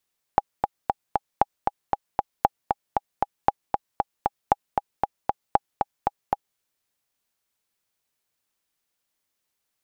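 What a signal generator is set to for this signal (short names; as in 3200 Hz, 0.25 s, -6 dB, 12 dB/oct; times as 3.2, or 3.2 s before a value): metronome 232 bpm, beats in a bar 4, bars 6, 815 Hz, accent 4.5 dB -3 dBFS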